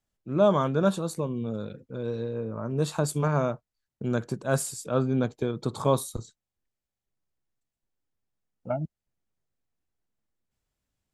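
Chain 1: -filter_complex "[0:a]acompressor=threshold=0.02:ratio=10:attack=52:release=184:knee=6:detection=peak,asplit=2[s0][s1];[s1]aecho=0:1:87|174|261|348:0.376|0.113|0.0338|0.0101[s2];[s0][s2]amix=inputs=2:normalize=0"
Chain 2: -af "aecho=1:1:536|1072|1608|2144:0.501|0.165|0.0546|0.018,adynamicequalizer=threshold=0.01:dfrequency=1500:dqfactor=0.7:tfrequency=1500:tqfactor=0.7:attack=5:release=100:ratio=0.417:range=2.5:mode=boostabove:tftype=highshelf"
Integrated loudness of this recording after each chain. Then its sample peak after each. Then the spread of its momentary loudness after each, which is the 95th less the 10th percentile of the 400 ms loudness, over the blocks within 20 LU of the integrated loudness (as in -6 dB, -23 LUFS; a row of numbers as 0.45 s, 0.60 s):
-35.5 LUFS, -27.0 LUFS; -15.0 dBFS, -8.5 dBFS; 6 LU, 15 LU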